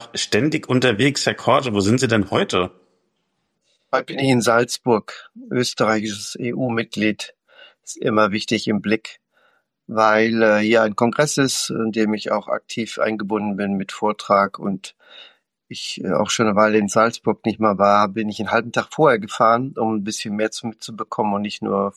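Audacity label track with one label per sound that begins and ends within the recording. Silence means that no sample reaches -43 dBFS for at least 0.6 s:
3.930000	9.160000	sound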